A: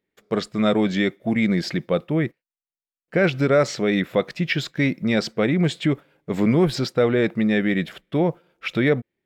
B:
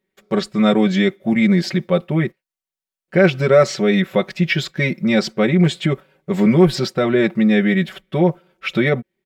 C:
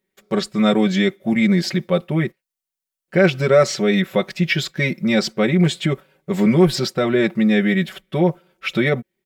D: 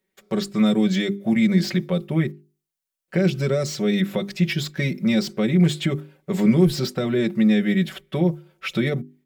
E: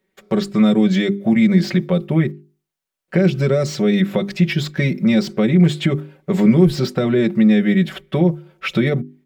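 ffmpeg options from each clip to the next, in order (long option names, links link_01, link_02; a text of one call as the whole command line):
ffmpeg -i in.wav -af "aecho=1:1:5.3:0.85,volume=1.5dB" out.wav
ffmpeg -i in.wav -af "highshelf=frequency=5300:gain=7,volume=-1.5dB" out.wav
ffmpeg -i in.wav -filter_complex "[0:a]acrossover=split=360|3700[link_01][link_02][link_03];[link_02]acompressor=threshold=-29dB:ratio=6[link_04];[link_03]asoftclip=type=hard:threshold=-30.5dB[link_05];[link_01][link_04][link_05]amix=inputs=3:normalize=0,bandreject=frequency=50:width_type=h:width=6,bandreject=frequency=100:width_type=h:width=6,bandreject=frequency=150:width_type=h:width=6,bandreject=frequency=200:width_type=h:width=6,bandreject=frequency=250:width_type=h:width=6,bandreject=frequency=300:width_type=h:width=6,bandreject=frequency=350:width_type=h:width=6,bandreject=frequency=400:width_type=h:width=6" out.wav
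ffmpeg -i in.wav -filter_complex "[0:a]highshelf=frequency=4200:gain=-9,asplit=2[link_01][link_02];[link_02]acompressor=threshold=-25dB:ratio=6,volume=-2dB[link_03];[link_01][link_03]amix=inputs=2:normalize=0,volume=2.5dB" out.wav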